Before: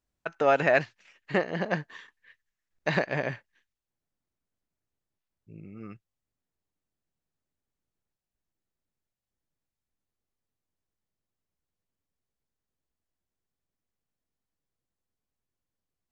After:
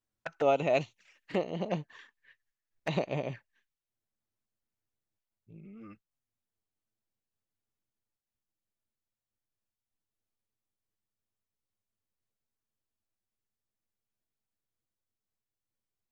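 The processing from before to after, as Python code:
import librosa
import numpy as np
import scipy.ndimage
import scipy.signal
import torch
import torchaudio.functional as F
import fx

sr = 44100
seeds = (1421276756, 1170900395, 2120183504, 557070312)

y = fx.high_shelf(x, sr, hz=4400.0, db=7.0, at=(0.7, 1.35))
y = fx.env_flanger(y, sr, rest_ms=9.2, full_db=-26.5)
y = fx.am_noise(y, sr, seeds[0], hz=5.7, depth_pct=50)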